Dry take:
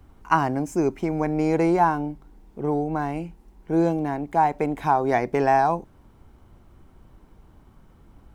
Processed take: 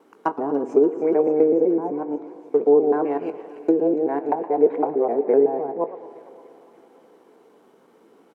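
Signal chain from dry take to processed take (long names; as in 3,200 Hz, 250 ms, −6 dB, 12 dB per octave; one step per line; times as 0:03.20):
reversed piece by piece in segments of 127 ms
treble cut that deepens with the level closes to 330 Hz, closed at −17 dBFS
high-pass filter 250 Hz 24 dB per octave
parametric band 450 Hz +13 dB 0.42 octaves
double-tracking delay 21 ms −12.5 dB
on a send: delay with a high-pass on its return 289 ms, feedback 74%, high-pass 2,200 Hz, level −11 dB
on the sum: four-comb reverb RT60 3.8 s, combs from 27 ms, DRR 16.5 dB
feedback echo with a swinging delay time 115 ms, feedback 65%, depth 195 cents, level −16.5 dB
level +1 dB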